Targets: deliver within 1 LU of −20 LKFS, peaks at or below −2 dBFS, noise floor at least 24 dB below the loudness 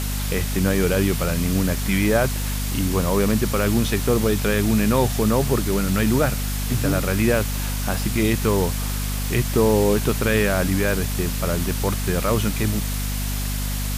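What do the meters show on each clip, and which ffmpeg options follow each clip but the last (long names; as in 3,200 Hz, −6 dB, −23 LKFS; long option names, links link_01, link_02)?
mains hum 50 Hz; hum harmonics up to 250 Hz; level of the hum −23 dBFS; background noise floor −25 dBFS; target noise floor −46 dBFS; integrated loudness −21.5 LKFS; sample peak −6.5 dBFS; target loudness −20.0 LKFS
→ -af "bandreject=frequency=50:width_type=h:width=6,bandreject=frequency=100:width_type=h:width=6,bandreject=frequency=150:width_type=h:width=6,bandreject=frequency=200:width_type=h:width=6,bandreject=frequency=250:width_type=h:width=6"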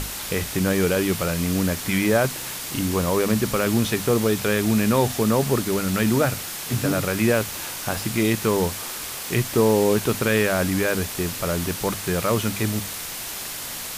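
mains hum none found; background noise floor −33 dBFS; target noise floor −47 dBFS
→ -af "afftdn=noise_reduction=14:noise_floor=-33"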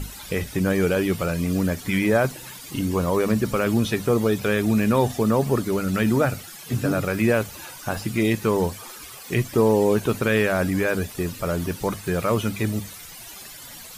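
background noise floor −41 dBFS; target noise floor −47 dBFS
→ -af "afftdn=noise_reduction=6:noise_floor=-41"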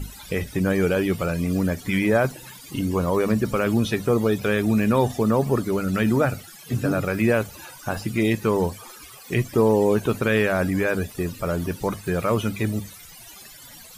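background noise floor −44 dBFS; target noise floor −47 dBFS
→ -af "afftdn=noise_reduction=6:noise_floor=-44"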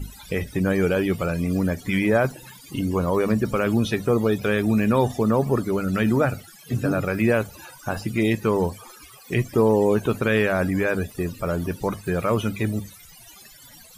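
background noise floor −47 dBFS; integrated loudness −23.0 LKFS; sample peak −8.0 dBFS; target loudness −20.0 LKFS
→ -af "volume=3dB"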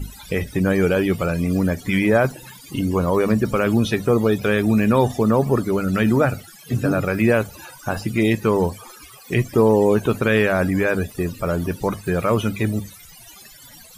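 integrated loudness −20.0 LKFS; sample peak −5.0 dBFS; background noise floor −44 dBFS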